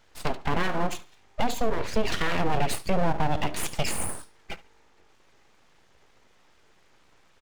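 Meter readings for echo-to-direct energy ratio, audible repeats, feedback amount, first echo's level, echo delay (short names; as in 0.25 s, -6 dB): -19.0 dB, 2, 27%, -19.5 dB, 71 ms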